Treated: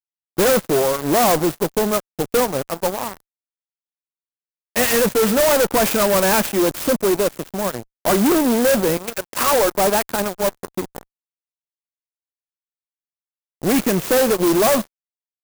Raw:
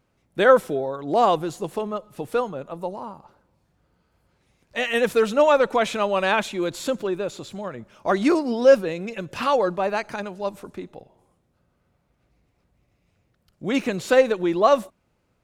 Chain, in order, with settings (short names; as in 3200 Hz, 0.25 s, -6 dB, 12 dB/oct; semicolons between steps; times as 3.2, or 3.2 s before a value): 8.97–9.75 HPF 400 Hz 12 dB/oct; fuzz box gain 27 dB, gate -36 dBFS; clock jitter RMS 0.084 ms